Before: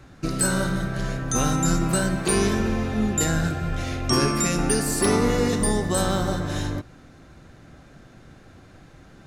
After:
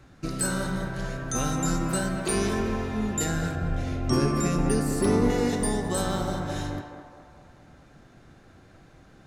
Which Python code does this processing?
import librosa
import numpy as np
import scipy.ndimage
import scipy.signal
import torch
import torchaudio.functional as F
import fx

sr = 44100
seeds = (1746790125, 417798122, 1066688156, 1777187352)

p1 = fx.tilt_shelf(x, sr, db=5.0, hz=790.0, at=(3.55, 5.3))
p2 = p1 + fx.echo_banded(p1, sr, ms=212, feedback_pct=56, hz=820.0, wet_db=-4.5, dry=0)
y = p2 * librosa.db_to_amplitude(-5.0)